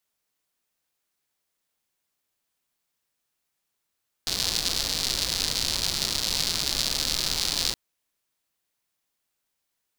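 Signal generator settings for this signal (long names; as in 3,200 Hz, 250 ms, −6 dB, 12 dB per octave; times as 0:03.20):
rain-like ticks over hiss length 3.47 s, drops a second 160, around 4,400 Hz, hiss −7.5 dB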